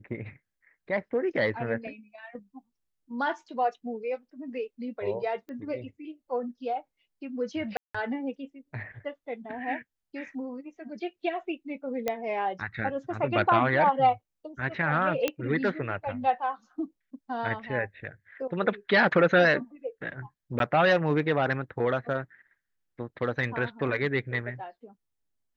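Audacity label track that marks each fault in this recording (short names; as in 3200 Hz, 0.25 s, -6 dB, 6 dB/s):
5.490000	5.490000	pop -32 dBFS
7.770000	7.950000	gap 0.175 s
12.080000	12.080000	pop -14 dBFS
15.280000	15.280000	pop -12 dBFS
20.590000	20.600000	gap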